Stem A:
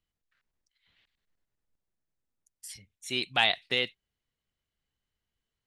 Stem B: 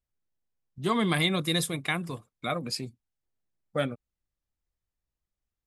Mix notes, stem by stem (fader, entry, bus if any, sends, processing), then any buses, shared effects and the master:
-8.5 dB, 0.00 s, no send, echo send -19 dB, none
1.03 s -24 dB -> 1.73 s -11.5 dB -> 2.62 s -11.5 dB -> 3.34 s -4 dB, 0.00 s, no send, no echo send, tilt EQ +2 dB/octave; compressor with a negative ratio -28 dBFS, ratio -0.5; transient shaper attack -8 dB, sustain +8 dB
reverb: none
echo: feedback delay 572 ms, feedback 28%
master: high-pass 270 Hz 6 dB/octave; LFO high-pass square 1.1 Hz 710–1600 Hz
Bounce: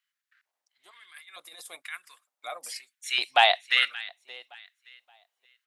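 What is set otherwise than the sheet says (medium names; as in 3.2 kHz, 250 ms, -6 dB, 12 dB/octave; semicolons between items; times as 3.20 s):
stem A -8.5 dB -> +3.0 dB; stem B: missing transient shaper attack -8 dB, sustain +8 dB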